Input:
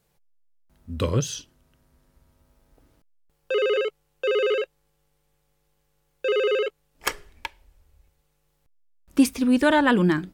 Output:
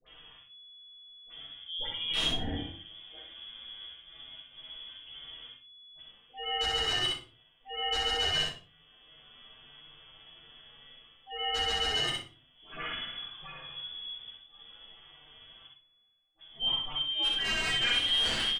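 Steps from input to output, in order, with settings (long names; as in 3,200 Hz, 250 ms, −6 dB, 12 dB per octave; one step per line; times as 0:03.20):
reversed playback
downward compressor 6 to 1, threshold −34 dBFS, peak gain reduction 20 dB
reversed playback
phase-vocoder stretch with locked phases 1.8×
volume swells 260 ms
voice inversion scrambler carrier 3,400 Hz
all-pass dispersion highs, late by 71 ms, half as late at 1,000 Hz
wrap-around overflow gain 29 dB
high-frequency loss of the air 120 metres
on a send: repeating echo 63 ms, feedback 19%, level −3 dB
on the sum: rectangular room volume 120 cubic metres, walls furnished, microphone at 3.7 metres
multiband upward and downward compressor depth 40%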